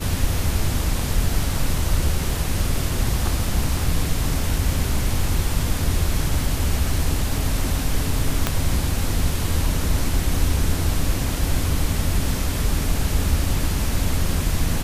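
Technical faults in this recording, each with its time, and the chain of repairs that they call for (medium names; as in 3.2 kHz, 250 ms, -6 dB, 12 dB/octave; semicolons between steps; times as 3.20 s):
8.47 s: pop -4 dBFS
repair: de-click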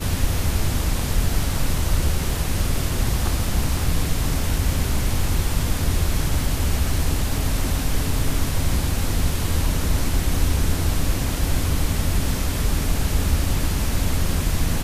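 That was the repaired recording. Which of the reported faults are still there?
8.47 s: pop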